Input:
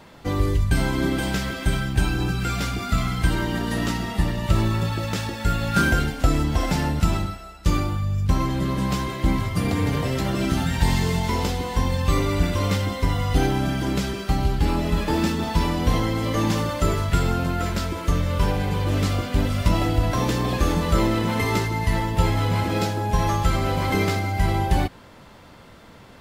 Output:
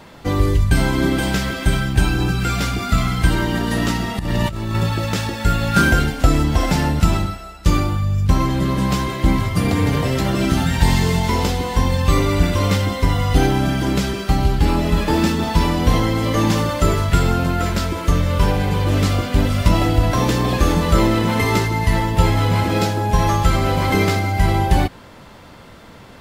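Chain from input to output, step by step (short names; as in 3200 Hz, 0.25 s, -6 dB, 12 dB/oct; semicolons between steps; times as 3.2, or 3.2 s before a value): 4.19–4.75 negative-ratio compressor -27 dBFS, ratio -1; gain +5 dB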